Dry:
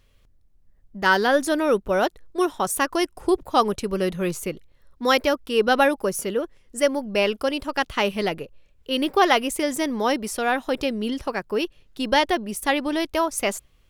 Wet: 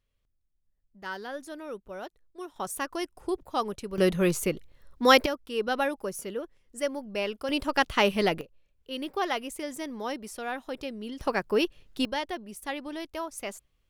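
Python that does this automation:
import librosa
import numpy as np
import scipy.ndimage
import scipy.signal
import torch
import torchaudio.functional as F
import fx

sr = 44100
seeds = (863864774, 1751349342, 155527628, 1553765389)

y = fx.gain(x, sr, db=fx.steps((0.0, -18.5), (2.56, -10.0), (3.98, 1.0), (5.26, -9.5), (7.49, -0.5), (8.41, -11.5), (11.21, -0.5), (12.05, -12.5)))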